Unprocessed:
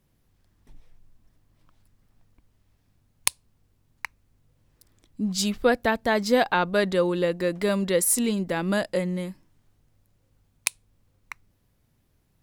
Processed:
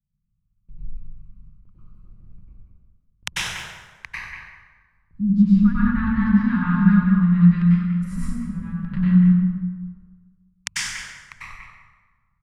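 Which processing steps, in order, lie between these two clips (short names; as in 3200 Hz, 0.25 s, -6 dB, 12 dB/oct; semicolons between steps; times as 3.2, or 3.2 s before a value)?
Wiener smoothing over 25 samples; elliptic band-stop 200–1200 Hz, stop band 40 dB; treble ducked by the level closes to 810 Hz, closed at -29 dBFS; gate with hold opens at -54 dBFS; low shelf 420 Hz +9 dB; 7.62–8.97 negative-ratio compressor -39 dBFS, ratio -1; speakerphone echo 0.19 s, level -7 dB; plate-style reverb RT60 1.4 s, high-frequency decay 0.65×, pre-delay 85 ms, DRR -9.5 dB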